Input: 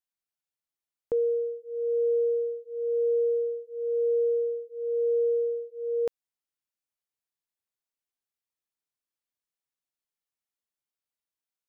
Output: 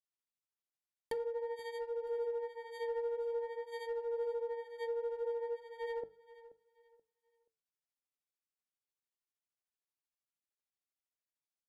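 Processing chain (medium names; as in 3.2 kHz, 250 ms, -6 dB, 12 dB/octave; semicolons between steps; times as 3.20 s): bit-reversed sample order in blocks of 32 samples; low-pass that closes with the level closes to 520 Hz, closed at -24 dBFS; granulator 120 ms, grains 13 per s, pitch spread up and down by 0 st; hum notches 50/100/150/200 Hz; in parallel at -7.5 dB: overload inside the chain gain 31 dB; on the sum: flange 0.51 Hz, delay 7.1 ms, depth 3.3 ms, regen -82%; feedback delay 480 ms, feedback 28%, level -17 dB; trim -3.5 dB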